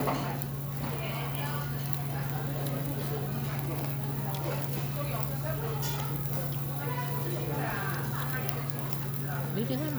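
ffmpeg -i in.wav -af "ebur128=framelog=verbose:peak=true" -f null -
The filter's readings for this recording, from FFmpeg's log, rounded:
Integrated loudness:
  I:         -32.2 LUFS
  Threshold: -42.2 LUFS
Loudness range:
  LRA:         0.9 LU
  Threshold: -52.2 LUFS
  LRA low:   -32.6 LUFS
  LRA high:  -31.7 LUFS
True peak:
  Peak:       -7.6 dBFS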